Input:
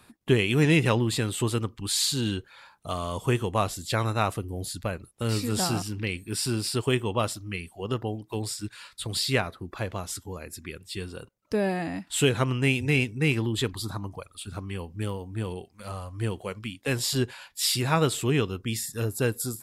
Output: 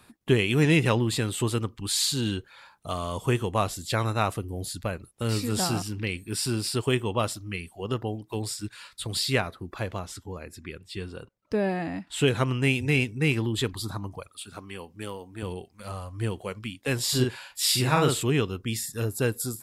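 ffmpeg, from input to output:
-filter_complex "[0:a]asettb=1/sr,asplit=3[s0][s1][s2];[s0]atrim=end=9.994[s3];[s1]atrim=start=9.99:end=12.28,asetpts=PTS-STARTPTS,afade=t=in:d=0.004:c=qsin,afade=t=out:st=2.286:d=0.004:c=qsin,highshelf=f=6300:g=-11.5[s4];[s2]atrim=start=12.276[s5];[s3][s4]acrossfade=d=0.004:c1=hsin:c2=qsin[s6];[s6][s5]acrossfade=d=0.004:c1=qsin:c2=hsin,asettb=1/sr,asplit=3[s7][s8][s9];[s7]atrim=end=14.294[s10];[s8]atrim=start=14.29:end=15.43,asetpts=PTS-STARTPTS,afade=t=in:d=0.004:c=qsin,afade=t=out:st=1.136:d=0.004:c=qsin,highpass=f=370:p=1[s11];[s9]atrim=start=15.426[s12];[s10][s11]acrossfade=d=0.004:c1=hsin:c2=qsin[s13];[s13][s12]acrossfade=d=0.004:c1=qsin:c2=hsin,asettb=1/sr,asplit=3[s14][s15][s16];[s14]atrim=end=17.044[s17];[s15]atrim=start=17.04:end=18.23,asetpts=PTS-STARTPTS,afade=t=in:d=0.004:c=qsin,afade=t=out:st=1.186:d=0.004:c=qsin,asplit=2[s18][s19];[s19]adelay=47,volume=0.708[s20];[s18][s20]amix=inputs=2:normalize=0,atrim=end_sample=52479[s21];[s16]atrim=start=18.226[s22];[s17][s21]acrossfade=d=0.004:c1=hsin:c2=qsin[s23];[s23][s22]acrossfade=d=0.004:c1=qsin:c2=hsin"

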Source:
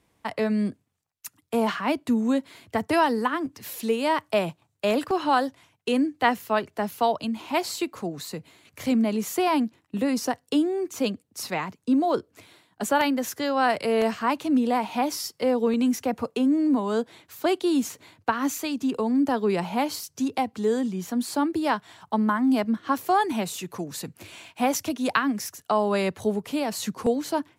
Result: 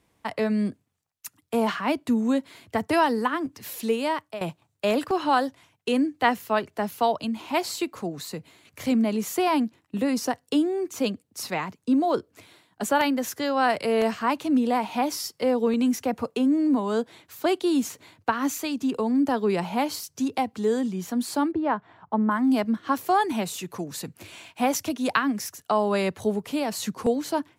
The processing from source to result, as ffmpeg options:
-filter_complex "[0:a]asplit=3[s0][s1][s2];[s0]afade=t=out:st=21.51:d=0.02[s3];[s1]lowpass=1500,afade=t=in:st=21.51:d=0.02,afade=t=out:st=22.3:d=0.02[s4];[s2]afade=t=in:st=22.3:d=0.02[s5];[s3][s4][s5]amix=inputs=3:normalize=0,asplit=2[s6][s7];[s6]atrim=end=4.41,asetpts=PTS-STARTPTS,afade=t=out:st=3.96:d=0.45:silence=0.149624[s8];[s7]atrim=start=4.41,asetpts=PTS-STARTPTS,afade=t=in:d=0.004:c=hsin:silence=0.149624[s9];[s8][s9]concat=n=2:v=0:a=1"

